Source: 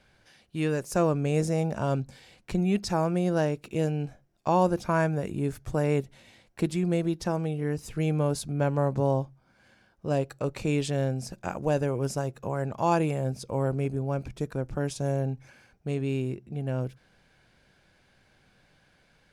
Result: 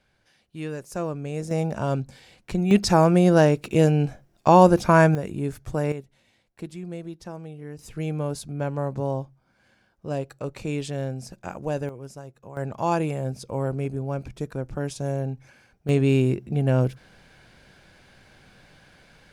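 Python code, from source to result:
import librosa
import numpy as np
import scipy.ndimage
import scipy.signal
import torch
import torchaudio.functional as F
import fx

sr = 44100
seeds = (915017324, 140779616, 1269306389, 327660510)

y = fx.gain(x, sr, db=fx.steps((0.0, -5.0), (1.51, 2.0), (2.71, 9.0), (5.15, 1.0), (5.92, -9.0), (7.79, -2.0), (11.89, -10.5), (12.57, 0.5), (15.89, 9.5)))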